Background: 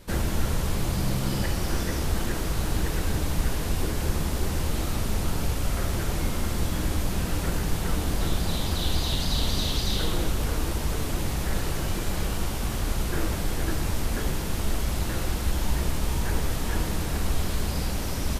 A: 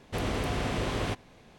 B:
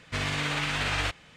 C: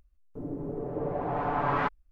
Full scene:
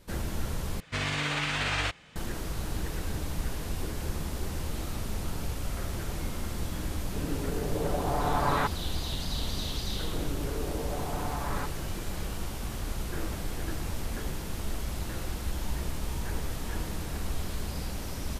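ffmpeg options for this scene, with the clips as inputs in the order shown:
ffmpeg -i bed.wav -i cue0.wav -i cue1.wav -i cue2.wav -filter_complex "[3:a]asplit=2[link_01][link_02];[0:a]volume=-7dB[link_03];[link_02]acompressor=threshold=-32dB:ratio=6:attack=3.2:release=140:knee=1:detection=peak[link_04];[1:a]acompressor=threshold=-38dB:ratio=6:attack=3.2:release=140:knee=1:detection=peak[link_05];[link_03]asplit=2[link_06][link_07];[link_06]atrim=end=0.804[link_08];[2:a]atrim=end=1.36,asetpts=PTS-STARTPTS,volume=-1dB[link_09];[link_07]atrim=start=2.156[link_10];[link_01]atrim=end=2.11,asetpts=PTS-STARTPTS,afade=type=in:duration=0.004:curve=hsin,afade=type=out:start_time=2.106:duration=0.004:curve=hsin,adelay=6790[link_11];[link_04]atrim=end=2.11,asetpts=PTS-STARTPTS,volume=-0.5dB,afade=type=in:duration=0.004:curve=hsin,afade=type=out:start_time=2.106:duration=0.004:curve=hsin,adelay=431298S[link_12];[link_05]atrim=end=1.58,asetpts=PTS-STARTPTS,volume=-9.5dB,afade=type=in:duration=0.004:curve=hsin,afade=type=out:start_time=1.576:duration=0.004:curve=hsin,adelay=13060[link_13];[link_08][link_09]acrossfade=duration=0.004:curve1=hsin:curve2=hsin[link_14];[link_14][link_10]acrossfade=duration=0.004:curve1=hsin:curve2=hsin[link_15];[link_15][link_11][link_12][link_13]amix=inputs=4:normalize=0" out.wav

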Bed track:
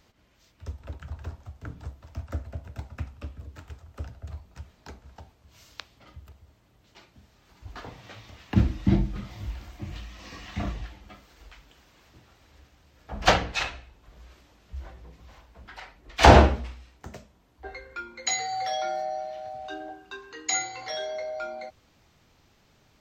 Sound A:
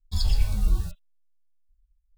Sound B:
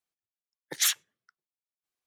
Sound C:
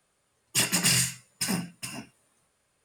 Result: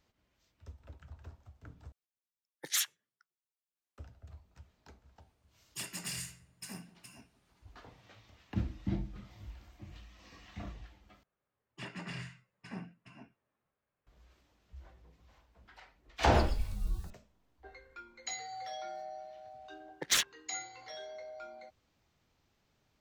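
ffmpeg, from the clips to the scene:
ffmpeg -i bed.wav -i cue0.wav -i cue1.wav -i cue2.wav -filter_complex "[2:a]asplit=2[link_01][link_02];[3:a]asplit=2[link_03][link_04];[0:a]volume=-13dB[link_05];[link_03]asplit=2[link_06][link_07];[link_07]adelay=174,lowpass=frequency=1200:poles=1,volume=-17dB,asplit=2[link_08][link_09];[link_09]adelay=174,lowpass=frequency=1200:poles=1,volume=0.43,asplit=2[link_10][link_11];[link_11]adelay=174,lowpass=frequency=1200:poles=1,volume=0.43,asplit=2[link_12][link_13];[link_13]adelay=174,lowpass=frequency=1200:poles=1,volume=0.43[link_14];[link_06][link_08][link_10][link_12][link_14]amix=inputs=5:normalize=0[link_15];[link_04]lowpass=2100[link_16];[link_02]adynamicsmooth=sensitivity=4.5:basefreq=1200[link_17];[link_05]asplit=3[link_18][link_19][link_20];[link_18]atrim=end=1.924[link_21];[link_01]atrim=end=2.06,asetpts=PTS-STARTPTS,volume=-6.5dB[link_22];[link_19]atrim=start=3.976:end=11.234[link_23];[link_16]atrim=end=2.84,asetpts=PTS-STARTPTS,volume=-13dB[link_24];[link_20]atrim=start=14.066[link_25];[link_15]atrim=end=2.84,asetpts=PTS-STARTPTS,volume=-17dB,afade=type=in:duration=0.004:curve=hsin,afade=type=out:start_time=2.836:duration=0.004:curve=hsin,adelay=229761S[link_26];[1:a]atrim=end=2.17,asetpts=PTS-STARTPTS,volume=-12.5dB,afade=type=in:duration=0.004:curve=hsin,afade=type=out:start_time=2.166:duration=0.004:curve=hsin,adelay=16190[link_27];[link_17]atrim=end=2.06,asetpts=PTS-STARTPTS,volume=-0.5dB,afade=type=in:duration=0.004:curve=hsin,afade=type=out:start_time=2.056:duration=0.004:curve=hsin,adelay=19300[link_28];[link_21][link_22]acrossfade=duration=0.004:curve1=hsin:curve2=hsin[link_29];[link_29][link_23]acrossfade=duration=0.004:curve1=hsin:curve2=hsin[link_30];[link_30][link_24]acrossfade=duration=0.004:curve1=hsin:curve2=hsin[link_31];[link_31][link_25]acrossfade=duration=0.004:curve1=hsin:curve2=hsin[link_32];[link_32][link_26][link_27][link_28]amix=inputs=4:normalize=0" out.wav

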